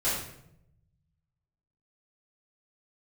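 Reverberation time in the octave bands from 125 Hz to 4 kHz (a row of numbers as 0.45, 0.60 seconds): 1.9, 1.1, 0.85, 0.65, 0.65, 0.55 seconds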